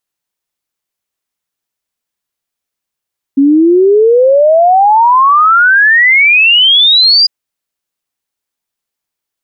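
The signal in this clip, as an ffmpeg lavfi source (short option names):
-f lavfi -i "aevalsrc='0.668*clip(min(t,3.9-t)/0.01,0,1)*sin(2*PI*270*3.9/log(4900/270)*(exp(log(4900/270)*t/3.9)-1))':d=3.9:s=44100"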